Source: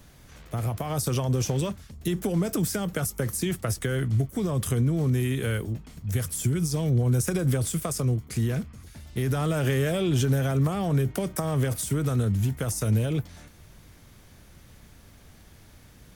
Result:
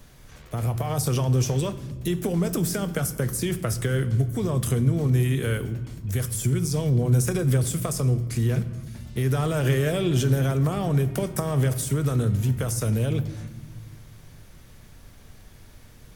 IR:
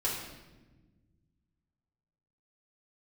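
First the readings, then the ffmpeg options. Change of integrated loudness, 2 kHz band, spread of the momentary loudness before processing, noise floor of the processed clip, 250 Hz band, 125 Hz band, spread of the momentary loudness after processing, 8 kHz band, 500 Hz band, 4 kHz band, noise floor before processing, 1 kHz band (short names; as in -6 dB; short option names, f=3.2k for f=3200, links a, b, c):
+2.0 dB, +1.0 dB, 7 LU, -48 dBFS, +1.0 dB, +2.5 dB, 9 LU, +1.0 dB, +2.0 dB, +1.0 dB, -52 dBFS, +1.0 dB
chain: -filter_complex "[0:a]asplit=2[a][b];[1:a]atrim=start_sample=2205,lowshelf=f=82:g=9[c];[b][c]afir=irnorm=-1:irlink=0,volume=-15dB[d];[a][d]amix=inputs=2:normalize=0"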